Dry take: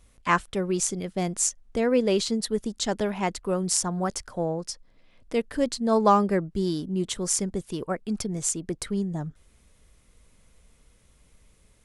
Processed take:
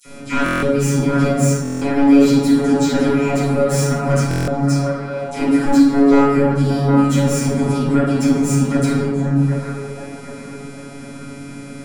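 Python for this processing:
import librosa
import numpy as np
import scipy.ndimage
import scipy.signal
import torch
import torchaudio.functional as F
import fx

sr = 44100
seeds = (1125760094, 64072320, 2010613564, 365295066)

y = fx.bin_compress(x, sr, power=0.6)
y = scipy.signal.sosfilt(scipy.signal.butter(4, 75.0, 'highpass', fs=sr, output='sos'), y)
y = fx.low_shelf(y, sr, hz=220.0, db=12.0)
y = fx.notch(y, sr, hz=850.0, q=12.0)
y = fx.dispersion(y, sr, late='lows', ms=59.0, hz=2100.0)
y = fx.robotise(y, sr, hz=140.0)
y = fx.small_body(y, sr, hz=(250.0, 1400.0, 2400.0), ring_ms=35, db=13)
y = 10.0 ** (-11.5 / 20.0) * np.tanh(y / 10.0 ** (-11.5 / 20.0))
y = fx.echo_wet_bandpass(y, sr, ms=764, feedback_pct=45, hz=920.0, wet_db=-3.5)
y = fx.room_shoebox(y, sr, seeds[0], volume_m3=280.0, walls='mixed', distance_m=4.5)
y = fx.buffer_glitch(y, sr, at_s=(0.44, 1.63, 4.29), block=1024, repeats=7)
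y = y * 10.0 ** (-6.5 / 20.0)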